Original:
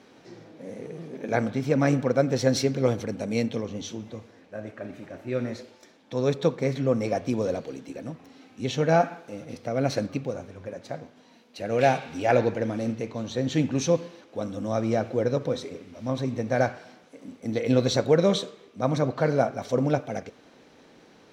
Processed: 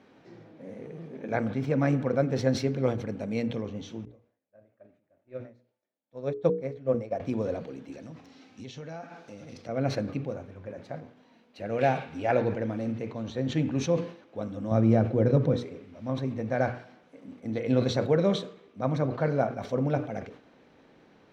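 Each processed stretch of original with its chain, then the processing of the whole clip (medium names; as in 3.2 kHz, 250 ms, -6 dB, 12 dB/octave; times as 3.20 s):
4.05–7.20 s: peaking EQ 600 Hz +8 dB 0.54 oct + upward expansion 2.5:1, over -36 dBFS
7.92–9.69 s: peaking EQ 5.6 kHz +12 dB 1.5 oct + compression 4:1, threshold -36 dBFS
14.71–15.57 s: high-pass 46 Hz + bass shelf 350 Hz +11 dB
whole clip: tone controls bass +3 dB, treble -11 dB; hum notches 60/120/180/240/300/360/420/480 Hz; decay stretcher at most 130 dB/s; trim -4 dB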